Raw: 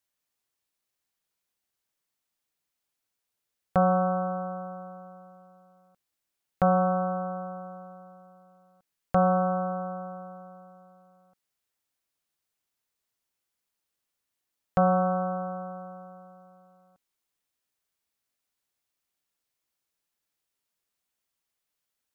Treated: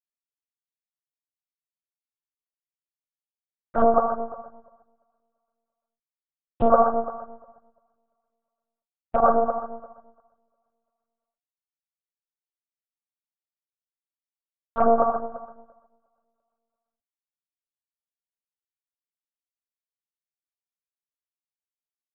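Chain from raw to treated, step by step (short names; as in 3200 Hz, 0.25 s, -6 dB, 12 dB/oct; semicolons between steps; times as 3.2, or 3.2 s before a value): doubler 42 ms -4.5 dB; phaser stages 6, 2.9 Hz, lowest notch 120–1800 Hz; monotone LPC vocoder at 8 kHz 230 Hz; flange 0.51 Hz, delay 4.4 ms, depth 5 ms, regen -88%; maximiser +18 dB; upward expander 2.5:1, over -31 dBFS; gain -4 dB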